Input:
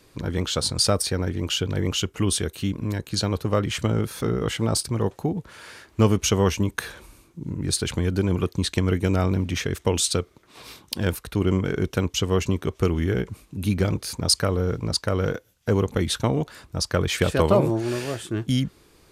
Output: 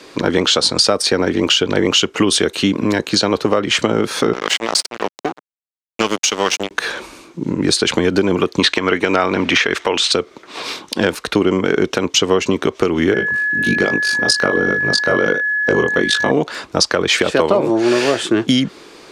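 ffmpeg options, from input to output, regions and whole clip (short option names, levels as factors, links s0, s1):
-filter_complex "[0:a]asettb=1/sr,asplit=3[s0][s1][s2];[s0]atrim=end=4.334[s3];[s1]atrim=start=4.33:end=6.71,asetpts=PTS-STARTPTS,afade=t=in:d=0.004:c=qsin,afade=t=out:st=2.376:d=0.004:c=qsin,tiltshelf=f=1100:g=-7,tremolo=f=1:d=0.3,aeval=exprs='sgn(val(0))*max(abs(val(0))-0.0355,0)':c=same[s4];[s2]atrim=start=6.706[s5];[s3][s4]acrossfade=d=0.004:c1=hsin:c2=qsin[s6];[s6][s5]acrossfade=d=0.004:c1=qsin:c2=hsin,asettb=1/sr,asplit=3[s7][s8][s9];[s7]atrim=end=8.594[s10];[s8]atrim=start=8.59:end=10.12,asetpts=PTS-STARTPTS,afade=t=in:d=0.004:c=qsin,afade=t=out:st=1.526:d=0.004:c=qsin,acrossover=split=3500[s11][s12];[s12]acompressor=threshold=0.0316:ratio=4:attack=1:release=60[s13];[s11][s13]amix=inputs=2:normalize=0,equalizer=f=1700:w=0.34:g=11.5[s14];[s9]atrim=start=10.116[s15];[s10][s14]acrossfade=d=0.004:c1=hsin:c2=qsin[s16];[s16][s15]acrossfade=d=0.004:c1=qsin:c2=hsin,asettb=1/sr,asplit=3[s17][s18][s19];[s17]atrim=end=13.144[s20];[s18]atrim=start=13.14:end=16.31,asetpts=PTS-STARTPTS,afade=t=in:d=0.004:c=qsin,afade=t=out:st=3.166:d=0.004:c=qsin,aeval=exprs='val(0)*sin(2*PI*26*n/s)':c=same,flanger=delay=20:depth=4.1:speed=1.3,aeval=exprs='val(0)+0.0224*sin(2*PI*1700*n/s)':c=same[s21];[s19]atrim=start=16.306[s22];[s20][s21]acrossfade=d=0.004:c1=hsin:c2=qsin[s23];[s23][s22]acrossfade=d=0.004:c1=qsin:c2=hsin,acrossover=split=220 7300:gain=0.0794 1 0.112[s24][s25][s26];[s24][s25][s26]amix=inputs=3:normalize=0,acompressor=threshold=0.0398:ratio=10,alimiter=level_in=8.91:limit=0.891:release=50:level=0:latency=1,volume=0.891"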